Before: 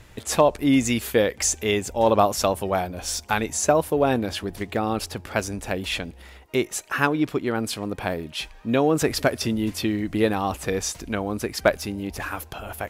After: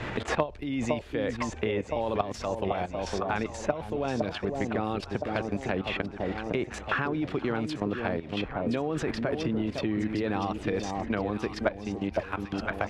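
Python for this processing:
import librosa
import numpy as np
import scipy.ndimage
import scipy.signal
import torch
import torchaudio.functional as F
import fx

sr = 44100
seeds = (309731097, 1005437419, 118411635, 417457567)

y = fx.level_steps(x, sr, step_db=15)
y = scipy.signal.sosfilt(scipy.signal.butter(2, 2900.0, 'lowpass', fs=sr, output='sos'), y)
y = fx.echo_alternate(y, sr, ms=508, hz=950.0, feedback_pct=59, wet_db=-6)
y = fx.band_squash(y, sr, depth_pct=100)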